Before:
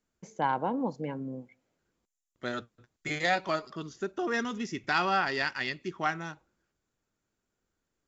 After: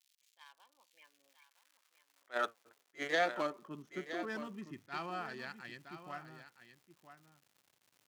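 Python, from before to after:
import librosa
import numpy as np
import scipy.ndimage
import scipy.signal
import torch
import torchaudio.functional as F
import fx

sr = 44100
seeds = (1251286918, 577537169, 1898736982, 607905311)

y = fx.wiener(x, sr, points=9)
y = fx.doppler_pass(y, sr, speed_mps=22, closest_m=7.1, pass_at_s=2.34)
y = fx.dmg_crackle(y, sr, seeds[0], per_s=220.0, level_db=-58.0)
y = fx.filter_sweep_highpass(y, sr, from_hz=3400.0, to_hz=110.0, start_s=0.77, end_s=4.29, q=1.2)
y = y + 10.0 ** (-11.5 / 20.0) * np.pad(y, (int(968 * sr / 1000.0), 0))[:len(y)]
y = fx.attack_slew(y, sr, db_per_s=400.0)
y = y * 10.0 ** (4.0 / 20.0)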